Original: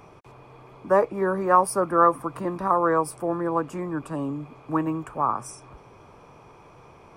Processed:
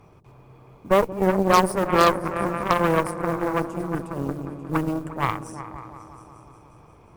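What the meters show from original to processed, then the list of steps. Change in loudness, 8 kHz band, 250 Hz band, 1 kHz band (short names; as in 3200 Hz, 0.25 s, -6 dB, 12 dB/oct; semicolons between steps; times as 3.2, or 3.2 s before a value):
+1.5 dB, +0.5 dB, +2.5 dB, 0.0 dB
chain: modulation noise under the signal 25 dB; low shelf 220 Hz +10 dB; on a send: repeats that get brighter 0.179 s, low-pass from 400 Hz, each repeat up 2 oct, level -6 dB; on the sum: added harmonics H 3 -23 dB, 6 -14 dB, 7 -27 dB, 8 -25 dB, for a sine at -5 dBFS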